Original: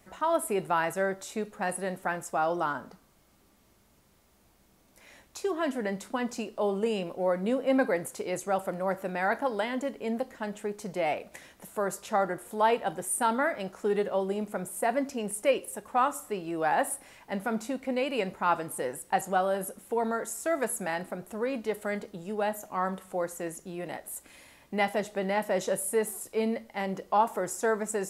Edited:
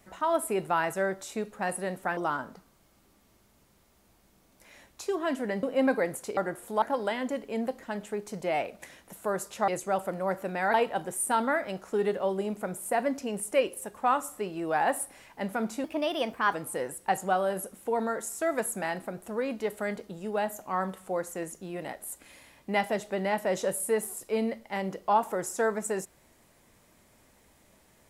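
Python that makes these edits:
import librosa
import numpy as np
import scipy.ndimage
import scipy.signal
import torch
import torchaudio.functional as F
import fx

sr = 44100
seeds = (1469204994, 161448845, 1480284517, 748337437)

y = fx.edit(x, sr, fx.cut(start_s=2.17, length_s=0.36),
    fx.cut(start_s=5.99, length_s=1.55),
    fx.swap(start_s=8.28, length_s=1.06, other_s=12.2, other_length_s=0.45),
    fx.speed_span(start_s=17.75, length_s=0.83, speed=1.19), tone=tone)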